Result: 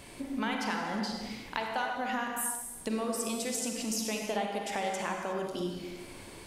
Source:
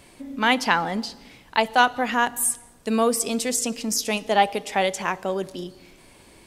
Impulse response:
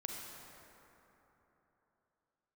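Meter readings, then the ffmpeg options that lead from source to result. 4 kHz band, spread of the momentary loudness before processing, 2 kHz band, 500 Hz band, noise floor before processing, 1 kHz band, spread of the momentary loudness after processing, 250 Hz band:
-10.5 dB, 11 LU, -12.0 dB, -10.0 dB, -52 dBFS, -12.0 dB, 5 LU, -7.0 dB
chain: -filter_complex "[0:a]acompressor=threshold=0.02:ratio=6[s0];[1:a]atrim=start_sample=2205,afade=t=out:st=0.42:d=0.01,atrim=end_sample=18963[s1];[s0][s1]afir=irnorm=-1:irlink=0,volume=1.68"

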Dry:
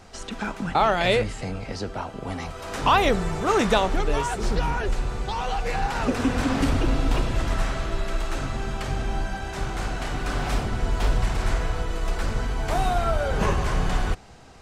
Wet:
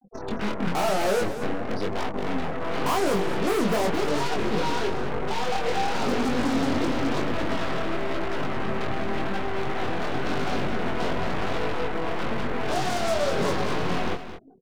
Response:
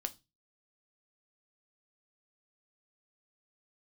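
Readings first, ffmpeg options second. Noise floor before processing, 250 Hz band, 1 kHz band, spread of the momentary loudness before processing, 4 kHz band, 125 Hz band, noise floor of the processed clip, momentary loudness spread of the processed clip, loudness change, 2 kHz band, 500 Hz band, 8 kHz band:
-39 dBFS, +1.5 dB, -2.0 dB, 11 LU, -1.0 dB, -5.5 dB, -32 dBFS, 6 LU, -1.5 dB, -1.0 dB, +1.0 dB, -1.5 dB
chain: -filter_complex "[0:a]highpass=250,tiltshelf=f=790:g=7.5,bandreject=f=820:w=24,afftfilt=real='re*gte(hypot(re,im),0.02)':imag='im*gte(hypot(re,im),0.02)':win_size=1024:overlap=0.75,acrossover=split=1800[s0][s1];[s1]acompressor=threshold=0.00355:ratio=6[s2];[s0][s2]amix=inputs=2:normalize=0,asoftclip=type=tanh:threshold=0.0944,aeval=exprs='0.0944*(cos(1*acos(clip(val(0)/0.0944,-1,1)))-cos(1*PI/2))+0.0237*(cos(8*acos(clip(val(0)/0.0944,-1,1)))-cos(8*PI/2))':c=same,asoftclip=type=hard:threshold=0.0473,flanger=delay=20:depth=4.3:speed=0.95,aecho=1:1:218:0.282,volume=2.37"

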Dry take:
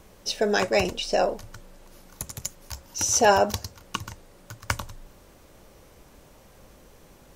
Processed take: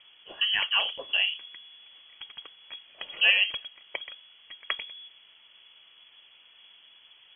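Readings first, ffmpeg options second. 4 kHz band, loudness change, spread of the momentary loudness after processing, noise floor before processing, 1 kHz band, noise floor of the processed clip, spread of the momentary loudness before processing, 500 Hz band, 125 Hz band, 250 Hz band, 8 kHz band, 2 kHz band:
+7.0 dB, -0.5 dB, 23 LU, -53 dBFS, -16.0 dB, -57 dBFS, 20 LU, -21.5 dB, under -25 dB, under -25 dB, under -40 dB, +3.5 dB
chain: -af "lowpass=f=2900:t=q:w=0.5098,lowpass=f=2900:t=q:w=0.6013,lowpass=f=2900:t=q:w=0.9,lowpass=f=2900:t=q:w=2.563,afreqshift=-3400,volume=0.668"

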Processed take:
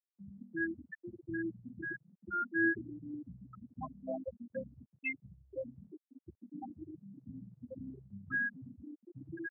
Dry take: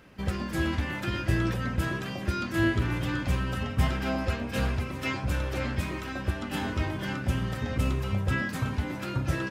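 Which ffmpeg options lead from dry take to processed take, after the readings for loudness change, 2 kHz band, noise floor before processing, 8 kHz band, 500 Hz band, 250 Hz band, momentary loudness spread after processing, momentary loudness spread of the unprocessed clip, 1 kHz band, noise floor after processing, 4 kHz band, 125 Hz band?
-10.0 dB, -4.5 dB, -36 dBFS, under -35 dB, -10.0 dB, -10.5 dB, 17 LU, 5 LU, -11.5 dB, under -85 dBFS, under -40 dB, -24.0 dB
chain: -af "afftfilt=real='re*gte(hypot(re,im),0.158)':imag='im*gte(hypot(re,im),0.158)':win_size=1024:overlap=0.75,highpass=470,volume=1.12"

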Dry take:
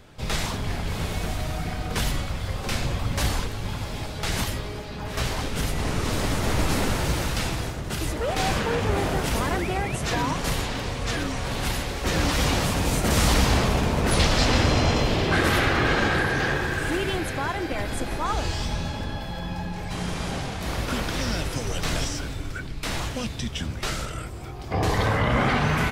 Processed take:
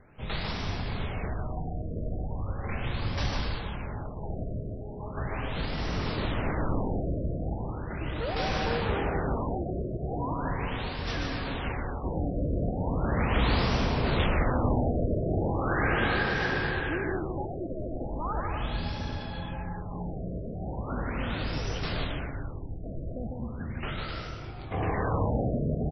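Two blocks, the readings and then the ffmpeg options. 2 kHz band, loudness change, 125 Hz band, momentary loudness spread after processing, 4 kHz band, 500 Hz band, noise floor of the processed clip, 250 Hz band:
-7.0 dB, -6.0 dB, -4.5 dB, 10 LU, -10.0 dB, -4.5 dB, -38 dBFS, -4.5 dB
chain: -af "aecho=1:1:150|255|328.5|380|416:0.631|0.398|0.251|0.158|0.1,areverse,acompressor=mode=upward:threshold=0.0141:ratio=2.5,areverse,afftfilt=real='re*lt(b*sr/1024,680*pow(6000/680,0.5+0.5*sin(2*PI*0.38*pts/sr)))':imag='im*lt(b*sr/1024,680*pow(6000/680,0.5+0.5*sin(2*PI*0.38*pts/sr)))':win_size=1024:overlap=0.75,volume=0.473"

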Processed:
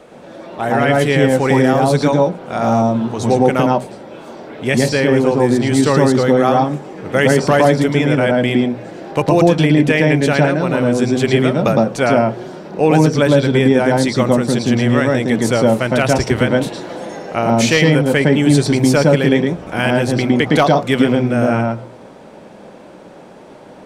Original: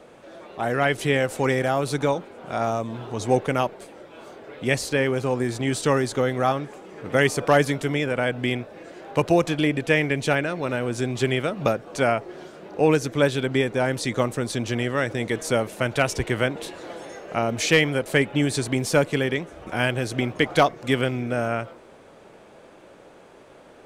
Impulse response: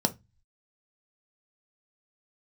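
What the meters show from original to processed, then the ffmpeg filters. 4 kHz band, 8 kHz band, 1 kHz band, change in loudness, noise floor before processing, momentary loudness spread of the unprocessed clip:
+6.5 dB, +6.0 dB, +8.5 dB, +9.0 dB, -49 dBFS, 11 LU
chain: -filter_complex "[0:a]asplit=2[s0][s1];[1:a]atrim=start_sample=2205,lowpass=7000,adelay=110[s2];[s1][s2]afir=irnorm=-1:irlink=0,volume=0.299[s3];[s0][s3]amix=inputs=2:normalize=0,alimiter=level_in=2.11:limit=0.891:release=50:level=0:latency=1,volume=0.891"

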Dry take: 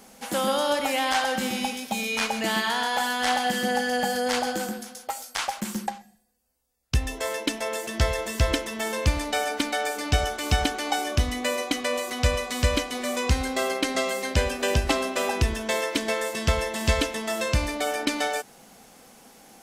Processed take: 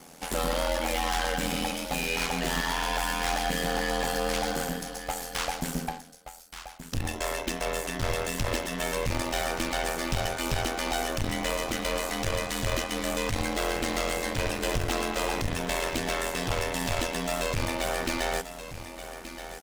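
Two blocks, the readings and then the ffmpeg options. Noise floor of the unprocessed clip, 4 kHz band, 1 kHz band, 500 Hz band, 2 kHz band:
-52 dBFS, -3.5 dB, -3.5 dB, -3.0 dB, -3.0 dB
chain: -filter_complex "[0:a]aeval=exprs='(tanh(35.5*val(0)+0.6)-tanh(0.6))/35.5':c=same,aeval=exprs='val(0)*sin(2*PI*42*n/s)':c=same,asplit=2[s0][s1];[s1]acrusher=bits=6:dc=4:mix=0:aa=0.000001,volume=0.251[s2];[s0][s2]amix=inputs=2:normalize=0,aecho=1:1:1176:0.266,volume=1.88"

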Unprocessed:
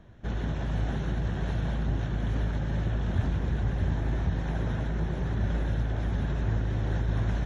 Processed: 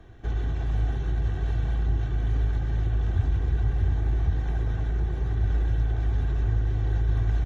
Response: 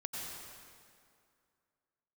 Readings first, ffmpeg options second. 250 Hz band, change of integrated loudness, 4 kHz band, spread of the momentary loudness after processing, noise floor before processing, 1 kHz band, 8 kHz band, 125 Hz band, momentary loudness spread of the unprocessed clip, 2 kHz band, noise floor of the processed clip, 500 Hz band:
-5.0 dB, +3.0 dB, -3.0 dB, 3 LU, -32 dBFS, -2.5 dB, no reading, +2.5 dB, 2 LU, -2.5 dB, -29 dBFS, -2.5 dB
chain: -filter_complex "[0:a]aecho=1:1:2.6:0.58,acrossover=split=140[s0][s1];[s1]acompressor=threshold=0.00501:ratio=2[s2];[s0][s2]amix=inputs=2:normalize=0,volume=1.33"

